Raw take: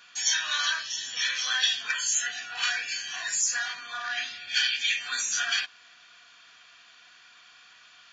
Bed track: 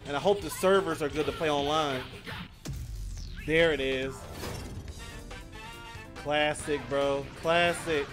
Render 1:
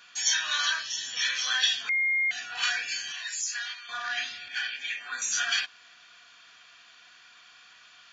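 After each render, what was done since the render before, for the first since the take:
0:01.89–0:02.31: beep over 2,130 Hz −22.5 dBFS
0:03.12–0:03.89: resonant band-pass 3,200 Hz, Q 1
0:04.48–0:05.22: three-way crossover with the lows and the highs turned down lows −18 dB, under 190 Hz, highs −14 dB, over 2,100 Hz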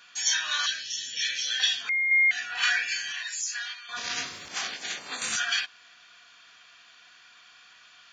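0:00.66–0:01.60: Butterworth band-reject 1,000 Hz, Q 0.73
0:02.11–0:03.23: parametric band 1,900 Hz +6.5 dB
0:03.96–0:05.35: ceiling on every frequency bin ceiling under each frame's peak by 29 dB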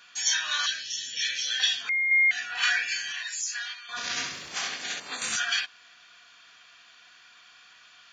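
0:03.90–0:05.00: flutter between parallel walls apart 11.5 metres, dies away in 0.6 s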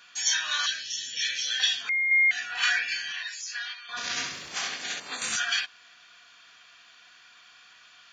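0:02.79–0:03.97: low-pass filter 5,600 Hz 24 dB per octave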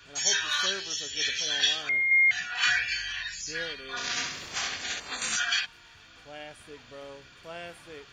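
mix in bed track −16.5 dB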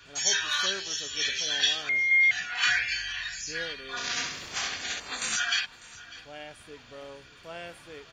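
single-tap delay 599 ms −19.5 dB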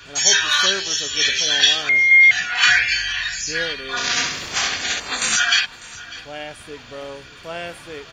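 level +10.5 dB
brickwall limiter −2 dBFS, peak gain reduction 1 dB

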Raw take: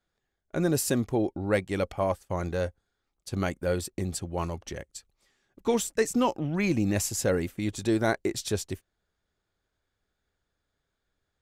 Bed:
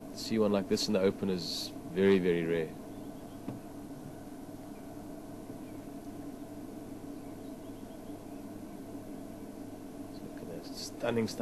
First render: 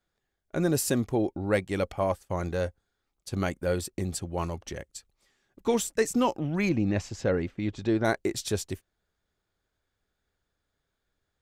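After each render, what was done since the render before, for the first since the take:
0:06.69–0:08.05: high-frequency loss of the air 180 metres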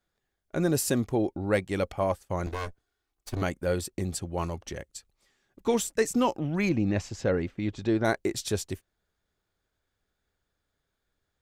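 0:02.46–0:03.42: lower of the sound and its delayed copy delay 2.7 ms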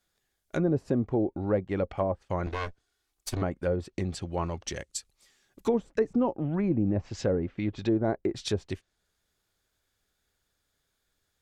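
treble cut that deepens with the level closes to 670 Hz, closed at −23 dBFS
high-shelf EQ 2,800 Hz +10 dB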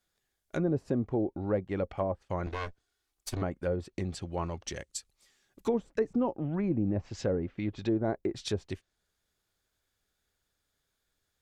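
level −3 dB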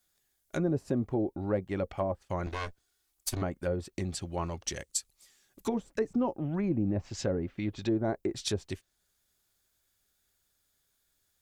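high-shelf EQ 6,300 Hz +12 dB
notch filter 470 Hz, Q 12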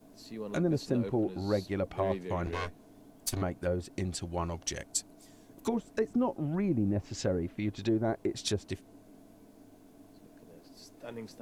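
mix in bed −11.5 dB

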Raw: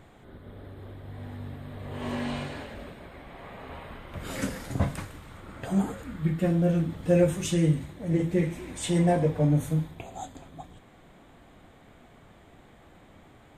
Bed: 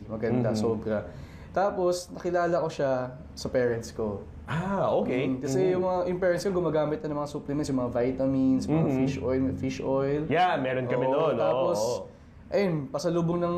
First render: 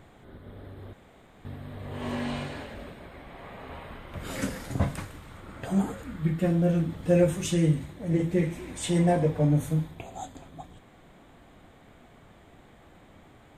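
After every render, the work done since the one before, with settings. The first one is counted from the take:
0:00.93–0:01.45: fill with room tone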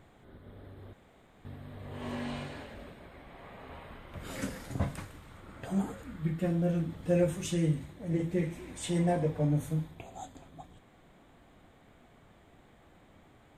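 level −5.5 dB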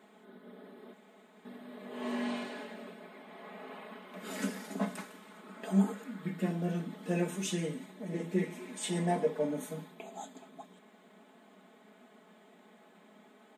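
elliptic high-pass filter 190 Hz, stop band 40 dB
comb filter 4.7 ms, depth 79%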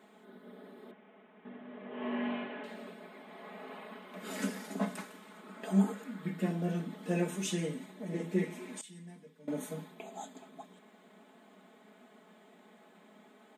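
0:00.91–0:02.64: Butterworth low-pass 3,200 Hz 48 dB per octave
0:08.81–0:09.48: guitar amp tone stack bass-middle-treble 6-0-2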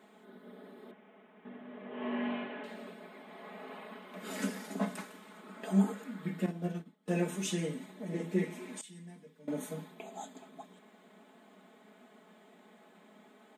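0:06.46–0:07.08: expander for the loud parts 2.5 to 1, over −47 dBFS

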